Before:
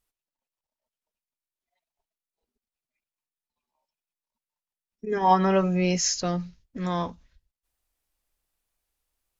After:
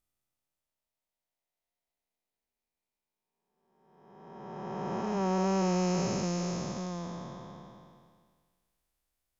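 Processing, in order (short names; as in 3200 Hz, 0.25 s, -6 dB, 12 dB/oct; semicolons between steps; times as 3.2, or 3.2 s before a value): time blur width 1.22 s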